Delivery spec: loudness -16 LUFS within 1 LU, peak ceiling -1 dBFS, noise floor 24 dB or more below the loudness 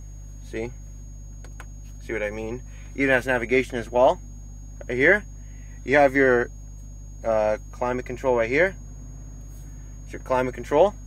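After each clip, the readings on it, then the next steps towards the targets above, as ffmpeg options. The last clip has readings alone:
hum 50 Hz; highest harmonic 150 Hz; hum level -36 dBFS; steady tone 6.6 kHz; tone level -53 dBFS; loudness -23.0 LUFS; peak level -4.0 dBFS; loudness target -16.0 LUFS
-> -af "bandreject=f=50:t=h:w=4,bandreject=f=100:t=h:w=4,bandreject=f=150:t=h:w=4"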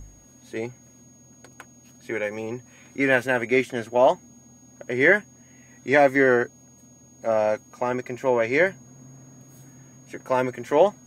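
hum not found; steady tone 6.6 kHz; tone level -53 dBFS
-> -af "bandreject=f=6600:w=30"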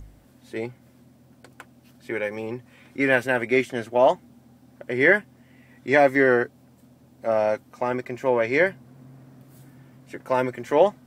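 steady tone not found; loudness -23.0 LUFS; peak level -4.0 dBFS; loudness target -16.0 LUFS
-> -af "volume=2.24,alimiter=limit=0.891:level=0:latency=1"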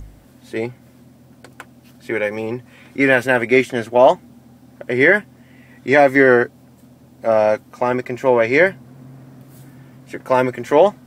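loudness -16.5 LUFS; peak level -1.0 dBFS; noise floor -49 dBFS

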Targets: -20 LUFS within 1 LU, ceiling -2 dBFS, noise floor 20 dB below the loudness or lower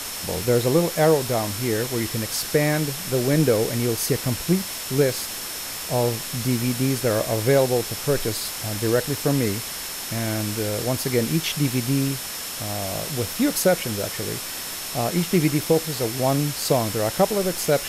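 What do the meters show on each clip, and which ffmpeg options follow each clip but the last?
steady tone 5.4 kHz; tone level -39 dBFS; noise floor -32 dBFS; noise floor target -43 dBFS; loudness -23.0 LUFS; peak level -6.5 dBFS; loudness target -20.0 LUFS
-> -af "bandreject=f=5400:w=30"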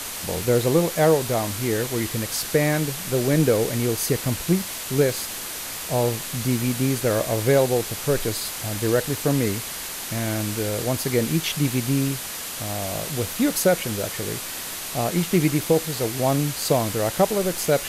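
steady tone not found; noise floor -33 dBFS; noise floor target -43 dBFS
-> -af "afftdn=nr=10:nf=-33"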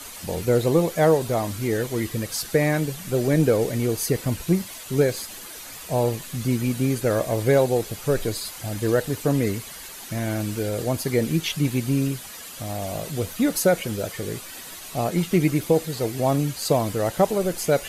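noise floor -39 dBFS; noise floor target -44 dBFS
-> -af "afftdn=nr=6:nf=-39"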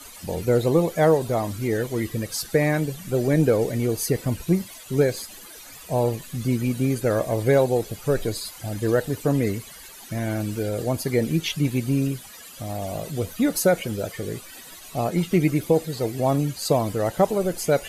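noise floor -43 dBFS; noise floor target -44 dBFS
-> -af "afftdn=nr=6:nf=-43"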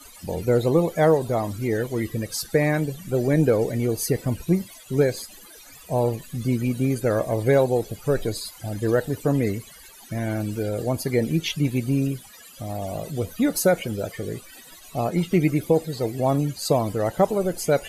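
noise floor -46 dBFS; loudness -24.0 LUFS; peak level -7.5 dBFS; loudness target -20.0 LUFS
-> -af "volume=1.58"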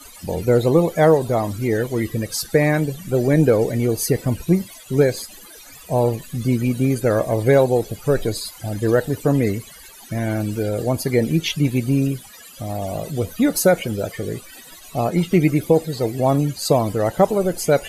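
loudness -20.0 LUFS; peak level -3.5 dBFS; noise floor -42 dBFS

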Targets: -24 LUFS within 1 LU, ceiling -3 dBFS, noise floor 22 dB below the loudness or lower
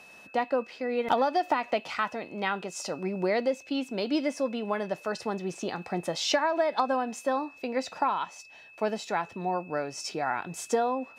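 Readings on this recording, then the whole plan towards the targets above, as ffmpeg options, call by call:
steady tone 2.6 kHz; tone level -50 dBFS; loudness -30.0 LUFS; peak level -13.0 dBFS; loudness target -24.0 LUFS
-> -af "bandreject=f=2600:w=30"
-af "volume=2"

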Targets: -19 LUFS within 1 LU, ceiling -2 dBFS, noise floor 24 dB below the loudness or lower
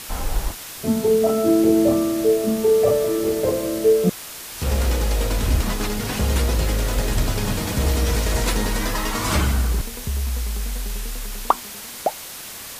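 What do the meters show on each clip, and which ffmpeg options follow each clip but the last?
noise floor -36 dBFS; noise floor target -46 dBFS; loudness -21.5 LUFS; peak level -2.0 dBFS; loudness target -19.0 LUFS
-> -af "afftdn=nr=10:nf=-36"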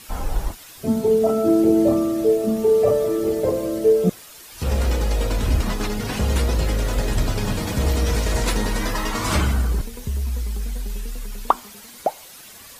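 noise floor -43 dBFS; noise floor target -46 dBFS
-> -af "afftdn=nr=6:nf=-43"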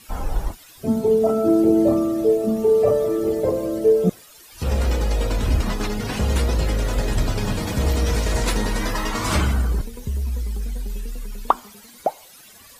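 noise floor -47 dBFS; loudness -22.0 LUFS; peak level -2.5 dBFS; loudness target -19.0 LUFS
-> -af "volume=1.41,alimiter=limit=0.794:level=0:latency=1"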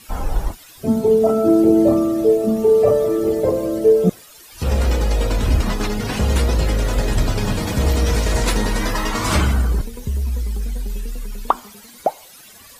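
loudness -19.0 LUFS; peak level -2.0 dBFS; noise floor -44 dBFS

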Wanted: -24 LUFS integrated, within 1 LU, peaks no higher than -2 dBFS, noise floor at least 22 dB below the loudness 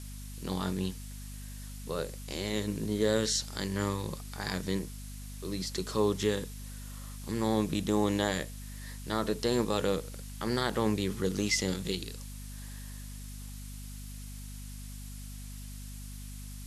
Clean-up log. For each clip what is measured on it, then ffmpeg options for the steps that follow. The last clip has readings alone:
hum 50 Hz; highest harmonic 250 Hz; hum level -41 dBFS; noise floor -43 dBFS; noise floor target -55 dBFS; loudness -32.5 LUFS; peak level -14.0 dBFS; loudness target -24.0 LUFS
-> -af "bandreject=f=50:t=h:w=6,bandreject=f=100:t=h:w=6,bandreject=f=150:t=h:w=6,bandreject=f=200:t=h:w=6,bandreject=f=250:t=h:w=6"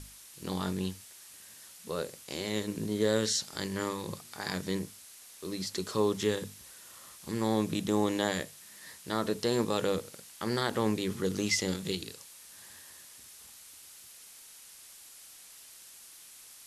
hum not found; noise floor -52 dBFS; noise floor target -55 dBFS
-> -af "afftdn=nr=6:nf=-52"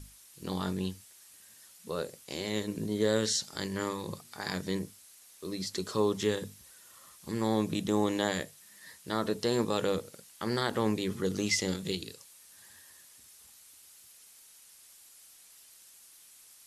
noise floor -56 dBFS; loudness -32.5 LUFS; peak level -13.5 dBFS; loudness target -24.0 LUFS
-> -af "volume=2.66"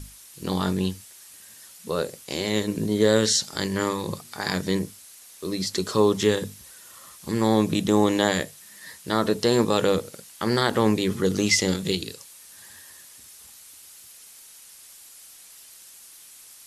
loudness -24.0 LUFS; peak level -5.0 dBFS; noise floor -48 dBFS

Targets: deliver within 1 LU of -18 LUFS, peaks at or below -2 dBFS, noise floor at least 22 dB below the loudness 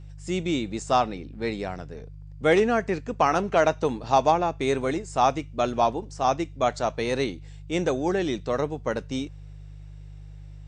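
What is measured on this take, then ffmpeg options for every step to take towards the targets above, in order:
hum 50 Hz; highest harmonic 150 Hz; hum level -40 dBFS; loudness -25.5 LUFS; peak level -8.0 dBFS; loudness target -18.0 LUFS
-> -af "bandreject=f=50:t=h:w=4,bandreject=f=100:t=h:w=4,bandreject=f=150:t=h:w=4"
-af "volume=2.37,alimiter=limit=0.794:level=0:latency=1"

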